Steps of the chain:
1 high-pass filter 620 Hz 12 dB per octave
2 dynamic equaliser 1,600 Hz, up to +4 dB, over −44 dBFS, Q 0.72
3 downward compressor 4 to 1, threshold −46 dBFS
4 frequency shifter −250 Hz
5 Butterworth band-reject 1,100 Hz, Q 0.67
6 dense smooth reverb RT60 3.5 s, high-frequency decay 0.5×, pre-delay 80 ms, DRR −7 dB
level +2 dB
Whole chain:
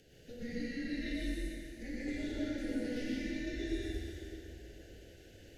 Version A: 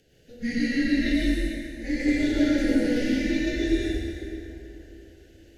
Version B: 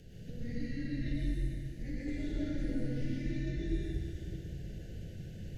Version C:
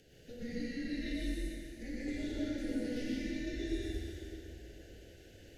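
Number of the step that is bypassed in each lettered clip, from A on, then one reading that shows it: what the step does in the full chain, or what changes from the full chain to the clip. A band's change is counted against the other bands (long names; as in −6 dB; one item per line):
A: 3, average gain reduction 9.5 dB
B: 1, 125 Hz band +14.5 dB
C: 2, 2 kHz band −2.0 dB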